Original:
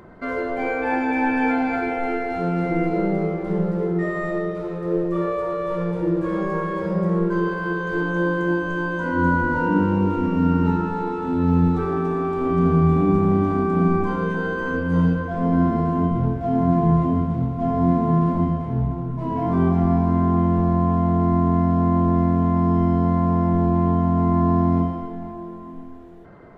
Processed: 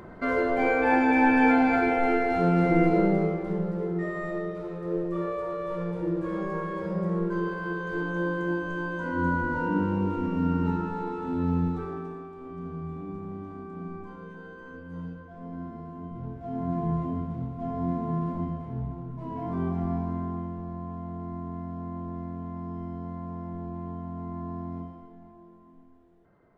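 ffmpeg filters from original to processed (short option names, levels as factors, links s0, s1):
-af "volume=2.99,afade=t=out:st=2.88:d=0.71:silence=0.421697,afade=t=out:st=11.42:d=0.88:silence=0.237137,afade=t=in:st=16.02:d=0.78:silence=0.354813,afade=t=out:st=19.96:d=0.6:silence=0.446684"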